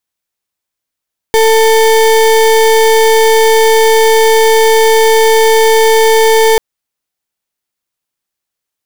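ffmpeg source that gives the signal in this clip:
ffmpeg -f lavfi -i "aevalsrc='0.447*(2*lt(mod(445*t,1),0.33)-1)':duration=5.24:sample_rate=44100" out.wav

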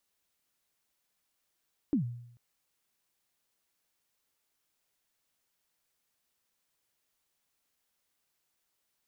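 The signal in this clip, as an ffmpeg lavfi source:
ffmpeg -f lavfi -i "aevalsrc='0.0794*pow(10,-3*t/0.74)*sin(2*PI*(320*0.108/log(120/320)*(exp(log(120/320)*min(t,0.108)/0.108)-1)+120*max(t-0.108,0)))':duration=0.44:sample_rate=44100" out.wav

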